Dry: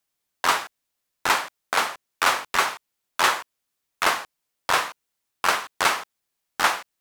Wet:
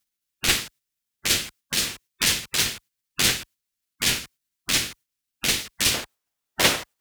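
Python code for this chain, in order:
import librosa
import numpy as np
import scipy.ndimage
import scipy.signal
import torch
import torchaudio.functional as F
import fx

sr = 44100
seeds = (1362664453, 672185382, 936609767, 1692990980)

y = fx.lower_of_two(x, sr, delay_ms=8.4)
y = fx.spec_gate(y, sr, threshold_db=-10, keep='weak')
y = fx.peak_eq(y, sr, hz=730.0, db=fx.steps((0.0, -11.0), (5.94, 2.5)), octaves=1.9)
y = y * librosa.db_to_amplitude(7.5)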